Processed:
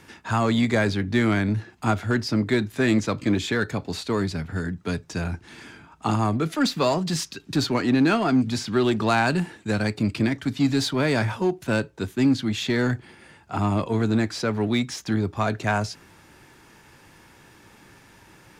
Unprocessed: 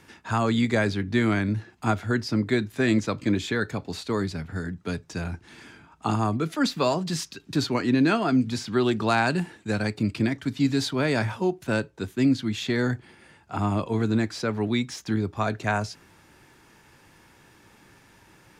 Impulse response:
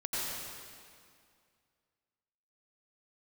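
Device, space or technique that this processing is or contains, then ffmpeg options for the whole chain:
parallel distortion: -filter_complex "[0:a]asplit=2[s0][s1];[s1]asoftclip=type=hard:threshold=0.0447,volume=0.501[s2];[s0][s2]amix=inputs=2:normalize=0"

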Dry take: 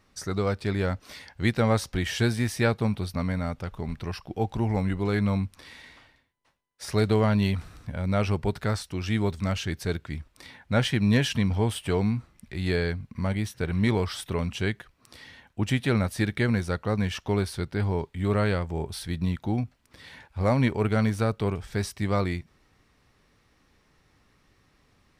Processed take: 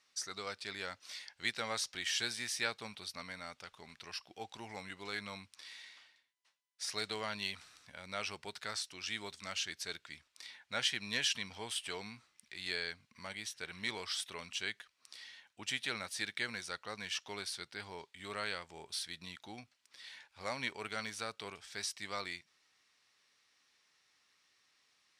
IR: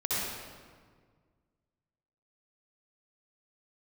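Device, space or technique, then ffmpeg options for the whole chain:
piezo pickup straight into a mixer: -af "lowpass=5700,aderivative,volume=1.78"

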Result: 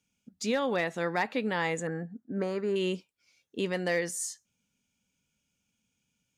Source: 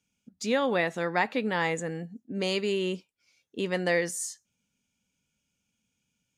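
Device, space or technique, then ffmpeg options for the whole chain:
clipper into limiter: -filter_complex "[0:a]asoftclip=type=hard:threshold=0.15,alimiter=limit=0.106:level=0:latency=1:release=293,asettb=1/sr,asplit=3[s0][s1][s2];[s0]atrim=end=1.874[s3];[s1]atrim=start=1.87:end=2.76,asetpts=PTS-STARTPTS,afade=t=in:d=0.004:c=qsin,afade=t=out:st=0.886:d=0.004:c=qsin,highshelf=f=2100:t=q:w=3:g=-11.5[s4];[s2]atrim=start=2.756[s5];[s3][s4]acrossfade=d=0.004:c1=hsin:c2=qsin[s6];[s6][s5]acrossfade=d=0.004:c1=qsin:c2=hsin"

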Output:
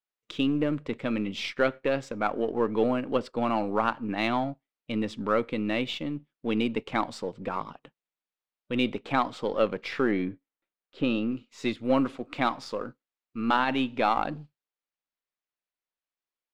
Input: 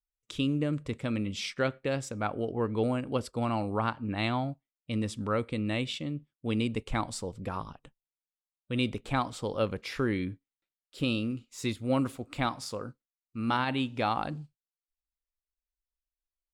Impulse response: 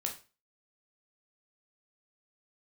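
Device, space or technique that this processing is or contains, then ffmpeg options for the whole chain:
crystal radio: -filter_complex "[0:a]highpass=210,lowpass=3500,aeval=exprs='if(lt(val(0),0),0.708*val(0),val(0))':c=same,asettb=1/sr,asplit=3[s0][s1][s2];[s0]atrim=end=10.114[s3];[s1]atrim=start=10.11:end=11.32,asetpts=PTS-STARTPTS,afade=t=in:d=0.004:c=qsin,afade=t=out:st=1.206:d=0.004:c=qsin,aemphasis=mode=reproduction:type=75fm[s4];[s2]atrim=start=11.316[s5];[s3][s4]acrossfade=d=0.004:c1=hsin:c2=qsin[s6];[s6][s5]acrossfade=d=0.004:c1=qsin:c2=hsin,volume=2.11"

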